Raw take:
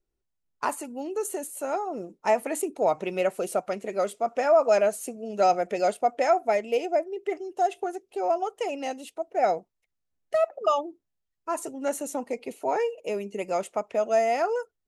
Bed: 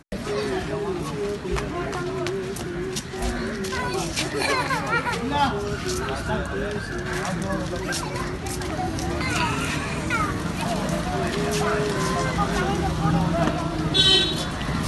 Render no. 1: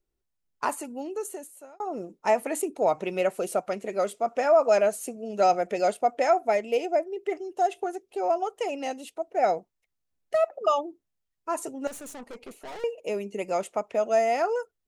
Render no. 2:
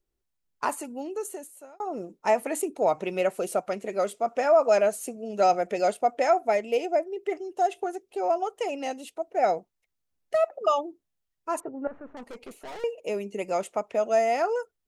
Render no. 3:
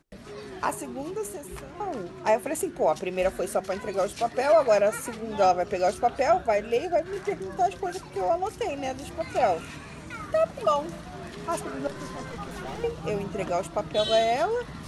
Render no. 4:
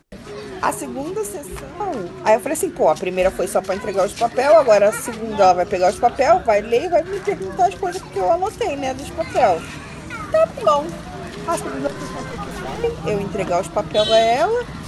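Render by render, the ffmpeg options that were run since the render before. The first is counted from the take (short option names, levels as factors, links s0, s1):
-filter_complex "[0:a]asettb=1/sr,asplit=3[s0][s1][s2];[s0]atrim=end=11.874[s3];[s1]atrim=start=11.87:end=12.84,asetpts=PTS-STARTPTS,afade=t=in:d=0.004:c=qsin,afade=t=out:st=0.966:d=0.004:c=qsin,aeval=exprs='(tanh(79.4*val(0)+0.55)-tanh(0.55))/79.4':c=same[s4];[s2]atrim=start=12.836[s5];[s3][s4]acrossfade=d=0.004:c1=hsin:c2=qsin[s6];[s6][s5]acrossfade=d=0.004:c1=qsin:c2=hsin,asplit=2[s7][s8];[s7]atrim=end=1.8,asetpts=PTS-STARTPTS,afade=t=out:st=0.93:d=0.87[s9];[s8]atrim=start=1.8,asetpts=PTS-STARTPTS,afade=t=in:d=0.004:c=hsin[s10];[s9][s10]concat=n=2:v=0:a=1"
-filter_complex "[0:a]asettb=1/sr,asplit=3[s0][s1][s2];[s0]atrim=end=11.604[s3];[s1]atrim=start=11.6:end=12.17,asetpts=PTS-STARTPTS,afade=t=in:d=0.004:c=qsin,afade=t=out:st=0.566:d=0.004:c=qsin,lowpass=f=1600:w=0.5412,lowpass=f=1600:w=1.3066[s4];[s2]atrim=start=12.166[s5];[s3][s4]acrossfade=d=0.004:c1=hsin:c2=qsin[s6];[s6][s5]acrossfade=d=0.004:c1=qsin:c2=hsin"
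-filter_complex "[1:a]volume=0.188[s0];[0:a][s0]amix=inputs=2:normalize=0"
-af "volume=2.51"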